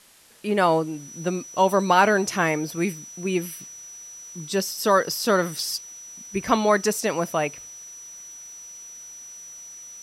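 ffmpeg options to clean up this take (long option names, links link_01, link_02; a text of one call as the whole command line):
ffmpeg -i in.wav -af "adeclick=threshold=4,bandreject=frequency=5900:width=30,agate=range=-21dB:threshold=-34dB" out.wav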